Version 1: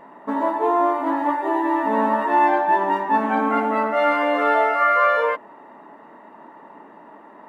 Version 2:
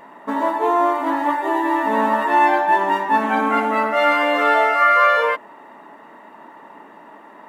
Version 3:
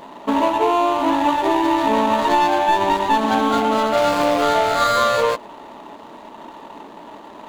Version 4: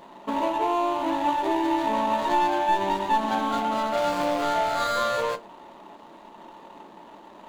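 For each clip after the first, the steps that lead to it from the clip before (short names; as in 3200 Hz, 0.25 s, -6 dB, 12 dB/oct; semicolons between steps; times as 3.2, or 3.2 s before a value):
high shelf 2000 Hz +11 dB
median filter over 25 samples; compressor, threshold -20 dBFS, peak gain reduction 7 dB; gain +6.5 dB
reverb RT60 0.20 s, pre-delay 6 ms, DRR 9 dB; gain -8.5 dB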